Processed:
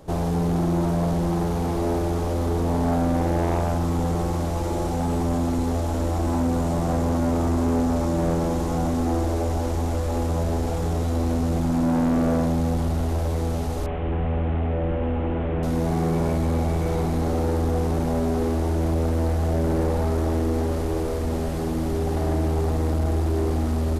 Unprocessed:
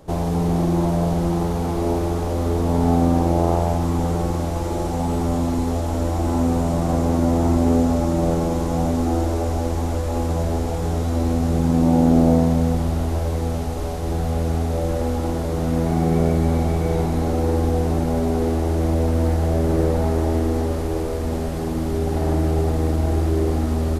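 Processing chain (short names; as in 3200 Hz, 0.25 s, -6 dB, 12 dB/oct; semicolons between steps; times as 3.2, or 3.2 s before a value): 13.86–15.63 delta modulation 16 kbps, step -37 dBFS; soft clip -17 dBFS, distortion -12 dB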